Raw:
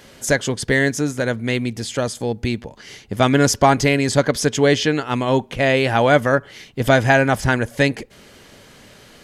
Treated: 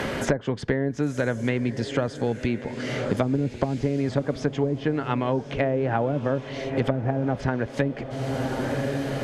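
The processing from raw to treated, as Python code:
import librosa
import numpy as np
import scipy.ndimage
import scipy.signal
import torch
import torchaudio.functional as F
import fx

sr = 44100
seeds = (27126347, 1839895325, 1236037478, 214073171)

y = fx.env_lowpass_down(x, sr, base_hz=320.0, full_db=-10.0)
y = fx.echo_diffused(y, sr, ms=1076, feedback_pct=46, wet_db=-15)
y = fx.band_squash(y, sr, depth_pct=100)
y = y * 10.0 ** (-6.0 / 20.0)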